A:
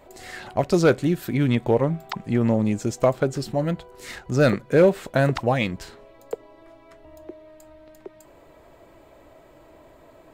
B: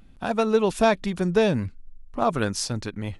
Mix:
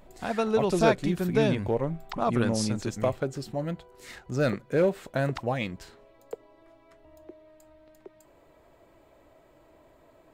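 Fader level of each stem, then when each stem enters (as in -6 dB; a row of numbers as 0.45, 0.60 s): -7.5, -4.5 dB; 0.00, 0.00 s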